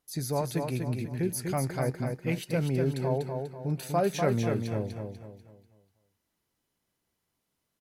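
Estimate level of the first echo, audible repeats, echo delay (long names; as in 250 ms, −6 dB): −5.0 dB, 4, 245 ms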